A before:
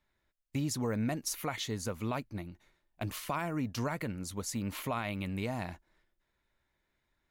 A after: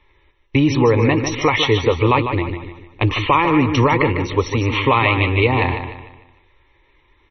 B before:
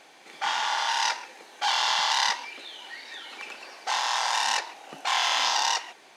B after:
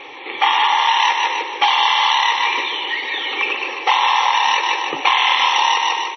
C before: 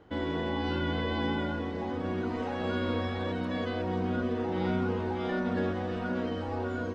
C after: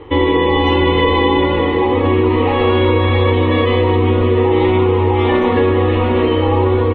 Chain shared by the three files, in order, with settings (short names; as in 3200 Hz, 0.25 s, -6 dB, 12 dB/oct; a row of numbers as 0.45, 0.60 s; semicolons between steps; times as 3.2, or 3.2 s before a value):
fixed phaser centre 1000 Hz, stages 8; on a send: feedback echo 0.15 s, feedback 40%, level -8 dB; on the sum: compressor 16:1, threshold -32 dBFS; MP3 24 kbps 24000 Hz; normalise peaks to -1.5 dBFS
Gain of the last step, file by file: +24.5, +21.0, +24.0 dB